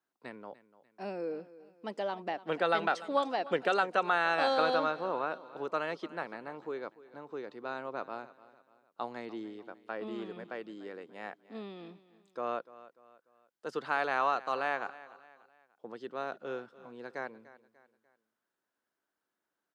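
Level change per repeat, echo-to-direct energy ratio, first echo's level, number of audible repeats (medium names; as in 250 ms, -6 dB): -7.5 dB, -17.0 dB, -18.0 dB, 3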